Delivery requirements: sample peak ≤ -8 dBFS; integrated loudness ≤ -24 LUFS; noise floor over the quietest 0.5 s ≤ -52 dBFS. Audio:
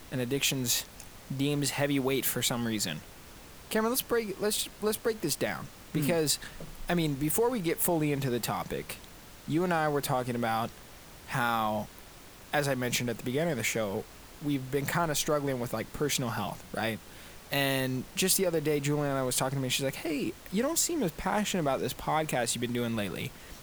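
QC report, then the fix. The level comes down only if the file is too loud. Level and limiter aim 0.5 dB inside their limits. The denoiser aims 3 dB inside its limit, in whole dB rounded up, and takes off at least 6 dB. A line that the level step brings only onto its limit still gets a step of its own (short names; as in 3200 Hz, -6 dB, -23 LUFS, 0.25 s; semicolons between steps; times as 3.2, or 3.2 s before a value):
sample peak -12.0 dBFS: OK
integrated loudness -30.0 LUFS: OK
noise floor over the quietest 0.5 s -50 dBFS: fail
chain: denoiser 6 dB, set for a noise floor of -50 dBFS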